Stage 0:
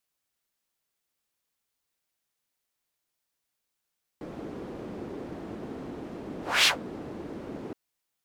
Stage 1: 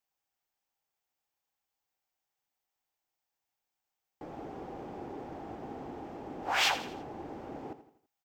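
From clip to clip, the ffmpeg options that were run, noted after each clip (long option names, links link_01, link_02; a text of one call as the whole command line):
ffmpeg -i in.wav -filter_complex "[0:a]equalizer=frequency=200:width_type=o:width=0.33:gain=-6,equalizer=frequency=800:width_type=o:width=0.33:gain=12,equalizer=frequency=4000:width_type=o:width=0.33:gain=-4,equalizer=frequency=10000:width_type=o:width=0.33:gain=-12,asplit=2[link_01][link_02];[link_02]aecho=0:1:83|166|249|332:0.237|0.104|0.0459|0.0202[link_03];[link_01][link_03]amix=inputs=2:normalize=0,volume=-5dB" out.wav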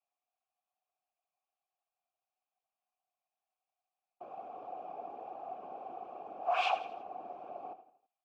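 ffmpeg -i in.wav -filter_complex "[0:a]afftfilt=real='hypot(re,im)*cos(2*PI*random(0))':imag='hypot(re,im)*sin(2*PI*random(1))':win_size=512:overlap=0.75,asplit=3[link_01][link_02][link_03];[link_01]bandpass=frequency=730:width_type=q:width=8,volume=0dB[link_04];[link_02]bandpass=frequency=1090:width_type=q:width=8,volume=-6dB[link_05];[link_03]bandpass=frequency=2440:width_type=q:width=8,volume=-9dB[link_06];[link_04][link_05][link_06]amix=inputs=3:normalize=0,volume=13dB" out.wav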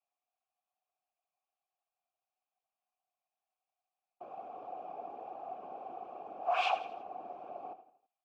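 ffmpeg -i in.wav -af anull out.wav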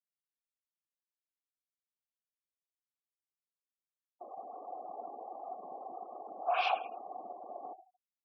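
ffmpeg -i in.wav -af "afftfilt=real='re*gte(hypot(re,im),0.00398)':imag='im*gte(hypot(re,im),0.00398)':win_size=1024:overlap=0.75" out.wav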